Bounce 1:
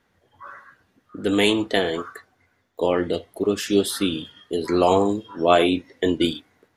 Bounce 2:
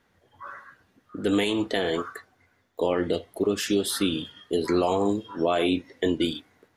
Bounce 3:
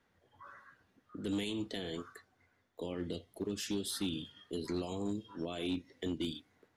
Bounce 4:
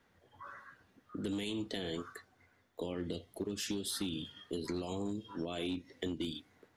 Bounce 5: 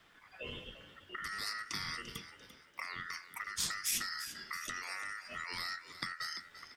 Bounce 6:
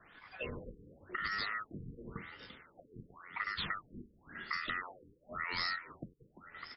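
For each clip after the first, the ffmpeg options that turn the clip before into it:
ffmpeg -i in.wav -af "alimiter=limit=-13.5dB:level=0:latency=1:release=148" out.wav
ffmpeg -i in.wav -filter_complex "[0:a]acrossover=split=300|3000[link_01][link_02][link_03];[link_02]acompressor=threshold=-48dB:ratio=2[link_04];[link_01][link_04][link_03]amix=inputs=3:normalize=0,highshelf=frequency=9900:gain=-6,asoftclip=type=hard:threshold=-21.5dB,volume=-7.5dB" out.wav
ffmpeg -i in.wav -af "acompressor=threshold=-38dB:ratio=6,volume=4dB" out.wav
ffmpeg -i in.wav -filter_complex "[0:a]aeval=exprs='val(0)*sin(2*PI*1600*n/s)':channel_layout=same,acrossover=split=340|3000[link_01][link_02][link_03];[link_02]acompressor=threshold=-52dB:ratio=10[link_04];[link_01][link_04][link_03]amix=inputs=3:normalize=0,asplit=4[link_05][link_06][link_07][link_08];[link_06]adelay=343,afreqshift=51,volume=-13.5dB[link_09];[link_07]adelay=686,afreqshift=102,volume=-22.9dB[link_10];[link_08]adelay=1029,afreqshift=153,volume=-32.2dB[link_11];[link_05][link_09][link_10][link_11]amix=inputs=4:normalize=0,volume=9dB" out.wav
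ffmpeg -i in.wav -af "afftfilt=real='re*lt(b*sr/1024,470*pow(5600/470,0.5+0.5*sin(2*PI*0.93*pts/sr)))':imag='im*lt(b*sr/1024,470*pow(5600/470,0.5+0.5*sin(2*PI*0.93*pts/sr)))':win_size=1024:overlap=0.75,volume=4.5dB" out.wav

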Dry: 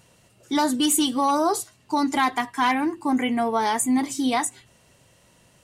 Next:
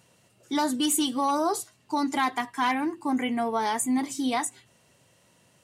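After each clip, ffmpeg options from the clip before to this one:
ffmpeg -i in.wav -af "highpass=98,volume=-4dB" out.wav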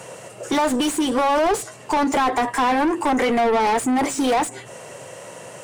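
ffmpeg -i in.wav -filter_complex "[0:a]equalizer=frequency=125:width_type=o:width=1:gain=7,equalizer=frequency=250:width_type=o:width=1:gain=-3,equalizer=frequency=500:width_type=o:width=1:gain=9,equalizer=frequency=4000:width_type=o:width=1:gain=-7,equalizer=frequency=8000:width_type=o:width=1:gain=9,acrossover=split=270|550[link_01][link_02][link_03];[link_01]acompressor=threshold=-40dB:ratio=4[link_04];[link_02]acompressor=threshold=-34dB:ratio=4[link_05];[link_03]acompressor=threshold=-34dB:ratio=4[link_06];[link_04][link_05][link_06]amix=inputs=3:normalize=0,asplit=2[link_07][link_08];[link_08]highpass=frequency=720:poles=1,volume=27dB,asoftclip=type=tanh:threshold=-17dB[link_09];[link_07][link_09]amix=inputs=2:normalize=0,lowpass=frequency=2200:poles=1,volume=-6dB,volume=5.5dB" out.wav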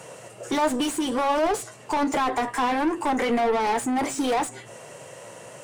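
ffmpeg -i in.wav -af "flanger=delay=6.3:depth=2.8:regen=76:speed=1.4:shape=sinusoidal" out.wav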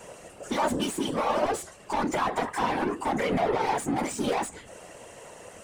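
ffmpeg -i in.wav -af "afftfilt=real='hypot(re,im)*cos(2*PI*random(0))':imag='hypot(re,im)*sin(2*PI*random(1))':win_size=512:overlap=0.75,volume=2.5dB" out.wav

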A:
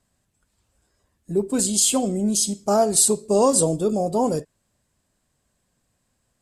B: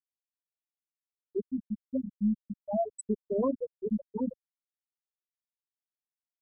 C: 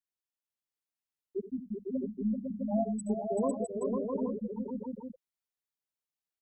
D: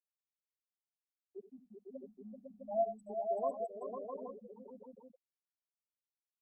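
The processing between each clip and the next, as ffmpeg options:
ffmpeg -i in.wav -af "afftfilt=real='re*gte(hypot(re,im),0.794)':imag='im*gte(hypot(re,im),0.794)':win_size=1024:overlap=0.75,asubboost=boost=7:cutoff=180,volume=-7.5dB" out.wav
ffmpeg -i in.wav -af "aecho=1:1:74|90|385|503|658|825:0.2|0.133|0.447|0.631|0.596|0.376,volume=-3.5dB" out.wav
ffmpeg -i in.wav -filter_complex "[0:a]asplit=3[link_01][link_02][link_03];[link_01]bandpass=frequency=730:width_type=q:width=8,volume=0dB[link_04];[link_02]bandpass=frequency=1090:width_type=q:width=8,volume=-6dB[link_05];[link_03]bandpass=frequency=2440:width_type=q:width=8,volume=-9dB[link_06];[link_04][link_05][link_06]amix=inputs=3:normalize=0,volume=4.5dB" -ar 48000 -c:a libopus -b:a 64k out.opus

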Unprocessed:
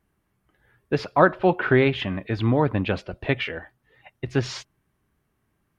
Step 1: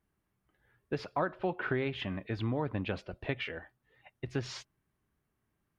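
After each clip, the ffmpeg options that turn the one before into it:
ffmpeg -i in.wav -af "acompressor=threshold=-21dB:ratio=3,volume=-8.5dB" out.wav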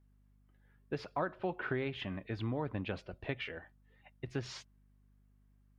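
ffmpeg -i in.wav -af "aeval=exprs='val(0)+0.000794*(sin(2*PI*50*n/s)+sin(2*PI*2*50*n/s)/2+sin(2*PI*3*50*n/s)/3+sin(2*PI*4*50*n/s)/4+sin(2*PI*5*50*n/s)/5)':channel_layout=same,volume=-3.5dB" out.wav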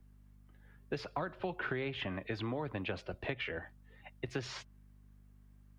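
ffmpeg -i in.wav -filter_complex "[0:a]acrossover=split=120|300|2700[link_01][link_02][link_03][link_04];[link_01]acompressor=threshold=-54dB:ratio=4[link_05];[link_02]acompressor=threshold=-55dB:ratio=4[link_06];[link_03]acompressor=threshold=-44dB:ratio=4[link_07];[link_04]acompressor=threshold=-55dB:ratio=4[link_08];[link_05][link_06][link_07][link_08]amix=inputs=4:normalize=0,volume=7dB" out.wav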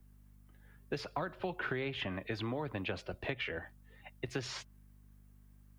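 ffmpeg -i in.wav -af "crystalizer=i=1:c=0" out.wav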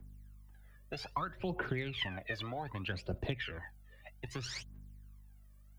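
ffmpeg -i in.wav -af "aphaser=in_gain=1:out_gain=1:delay=1.8:decay=0.75:speed=0.63:type=triangular,volume=-3.5dB" out.wav

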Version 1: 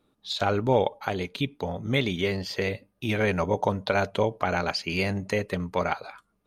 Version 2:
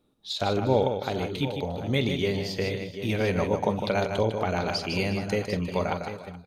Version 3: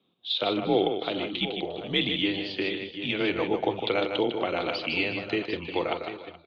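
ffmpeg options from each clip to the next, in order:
ffmpeg -i in.wav -filter_complex "[0:a]equalizer=frequency=1500:width_type=o:width=1.5:gain=-6,asplit=2[link_01][link_02];[link_02]aecho=0:1:45|154|352|426|739|749:0.188|0.447|0.112|0.106|0.133|0.2[link_03];[link_01][link_03]amix=inputs=2:normalize=0" out.wav
ffmpeg -i in.wav -af "highpass=frequency=290:width_type=q:width=0.5412,highpass=frequency=290:width_type=q:width=1.307,lowpass=frequency=3500:width_type=q:width=0.5176,lowpass=frequency=3500:width_type=q:width=0.7071,lowpass=frequency=3500:width_type=q:width=1.932,afreqshift=-93,aexciter=amount=3.7:drive=5.1:freq=2700" out.wav

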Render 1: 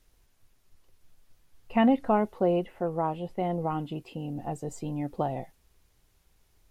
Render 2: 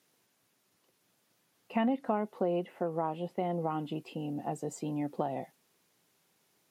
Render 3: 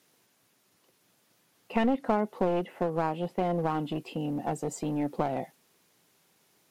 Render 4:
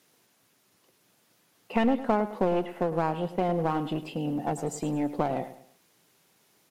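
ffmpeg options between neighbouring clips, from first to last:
ffmpeg -i in.wav -af "highpass=frequency=160:width=0.5412,highpass=frequency=160:width=1.3066,acompressor=threshold=-29dB:ratio=2.5" out.wav
ffmpeg -i in.wav -af "aeval=exprs='clip(val(0),-1,0.0224)':channel_layout=same,volume=5dB" out.wav
ffmpeg -i in.wav -af "aecho=1:1:106|212|318:0.211|0.074|0.0259,volume=1.5dB" out.wav

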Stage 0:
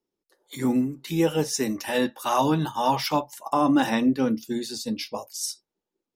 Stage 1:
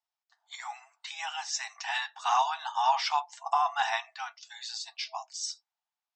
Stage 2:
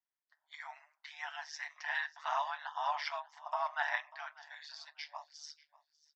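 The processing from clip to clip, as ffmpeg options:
ffmpeg -i in.wav -filter_complex "[0:a]afftfilt=real='re*between(b*sr/4096,650,8200)':imag='im*between(b*sr/4096,650,8200)':win_size=4096:overlap=0.75,acrossover=split=6000[link_01][link_02];[link_01]acontrast=69[link_03];[link_03][link_02]amix=inputs=2:normalize=0,volume=-7.5dB" out.wav
ffmpeg -i in.wav -af "aeval=exprs='val(0)*sin(2*PI*75*n/s)':channel_layout=same,highpass=440,equalizer=frequency=540:width_type=q:width=4:gain=-9,equalizer=frequency=800:width_type=q:width=4:gain=-7,equalizer=frequency=1200:width_type=q:width=4:gain=-6,equalizer=frequency=1800:width_type=q:width=4:gain=5,equalizer=frequency=2700:width_type=q:width=4:gain=-9,equalizer=frequency=3900:width_type=q:width=4:gain=-9,lowpass=frequency=4300:width=0.5412,lowpass=frequency=4300:width=1.3066,aecho=1:1:592|1184:0.0891|0.0187" out.wav

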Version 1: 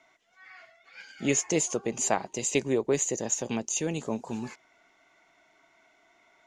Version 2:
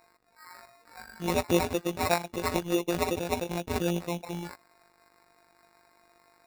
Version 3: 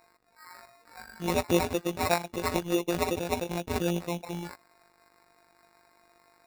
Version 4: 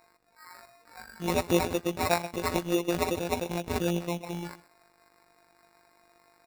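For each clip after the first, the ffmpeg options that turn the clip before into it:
ffmpeg -i in.wav -af "afftfilt=real='hypot(re,im)*cos(PI*b)':imag='0':win_size=1024:overlap=0.75,acrusher=samples=14:mix=1:aa=0.000001,volume=4dB" out.wav
ffmpeg -i in.wav -af anull out.wav
ffmpeg -i in.wav -af "aecho=1:1:128:0.141" out.wav

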